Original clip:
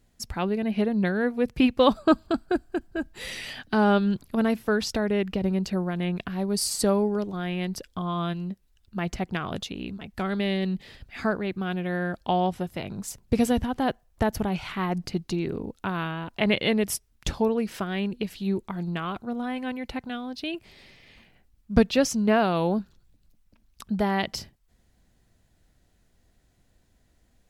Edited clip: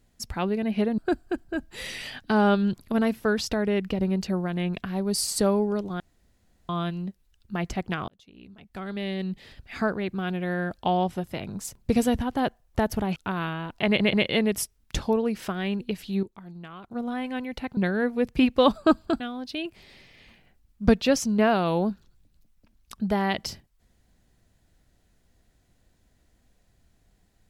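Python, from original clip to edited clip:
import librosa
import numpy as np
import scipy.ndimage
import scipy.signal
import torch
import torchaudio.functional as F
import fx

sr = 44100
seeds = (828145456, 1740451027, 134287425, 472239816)

y = fx.edit(x, sr, fx.move(start_s=0.98, length_s=1.43, to_s=20.09),
    fx.room_tone_fill(start_s=7.43, length_s=0.69),
    fx.fade_in_span(start_s=9.51, length_s=1.67),
    fx.cut(start_s=14.59, length_s=1.15),
    fx.stutter(start_s=16.45, slice_s=0.13, count=3),
    fx.clip_gain(start_s=18.55, length_s=0.68, db=-11.5), tone=tone)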